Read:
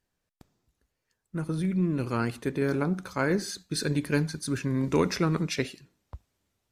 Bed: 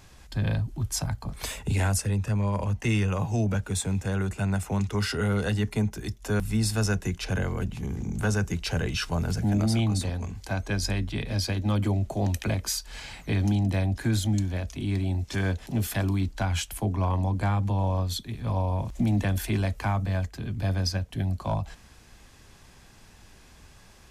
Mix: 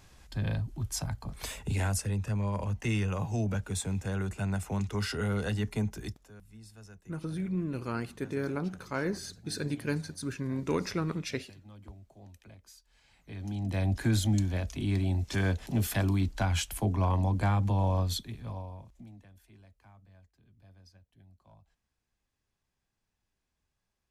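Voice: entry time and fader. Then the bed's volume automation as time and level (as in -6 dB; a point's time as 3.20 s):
5.75 s, -6.0 dB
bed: 6.08 s -5 dB
6.31 s -26 dB
13.01 s -26 dB
13.89 s -1.5 dB
18.14 s -1.5 dB
19.28 s -31 dB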